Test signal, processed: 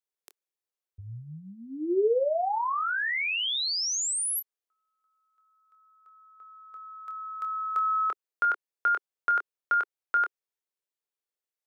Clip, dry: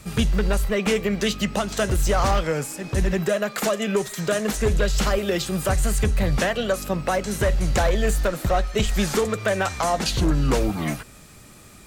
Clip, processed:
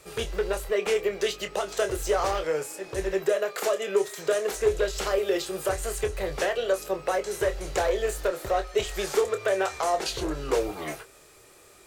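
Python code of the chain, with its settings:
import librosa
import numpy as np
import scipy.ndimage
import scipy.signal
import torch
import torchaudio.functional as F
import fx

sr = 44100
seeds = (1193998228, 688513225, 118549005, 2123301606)

y = fx.low_shelf_res(x, sr, hz=300.0, db=-9.5, q=3.0)
y = fx.doubler(y, sr, ms=26.0, db=-8.5)
y = F.gain(torch.from_numpy(y), -6.0).numpy()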